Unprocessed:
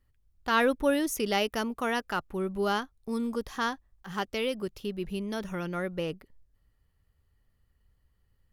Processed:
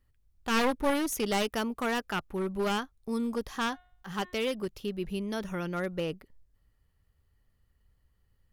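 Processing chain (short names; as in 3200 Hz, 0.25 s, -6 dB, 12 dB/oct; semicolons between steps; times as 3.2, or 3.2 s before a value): one-sided fold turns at -26 dBFS; 3.68–4.55 de-hum 361 Hz, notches 11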